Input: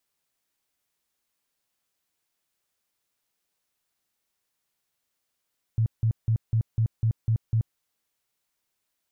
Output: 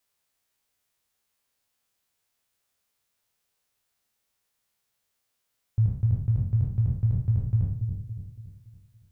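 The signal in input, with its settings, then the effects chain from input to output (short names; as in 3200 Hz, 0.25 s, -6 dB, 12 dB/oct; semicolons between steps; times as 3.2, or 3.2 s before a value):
tone bursts 112 Hz, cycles 9, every 0.25 s, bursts 8, -19 dBFS
spectral trails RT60 0.57 s; thirty-one-band EQ 100 Hz +5 dB, 160 Hz -5 dB, 315 Hz -7 dB; on a send: dark delay 0.282 s, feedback 45%, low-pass 440 Hz, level -5 dB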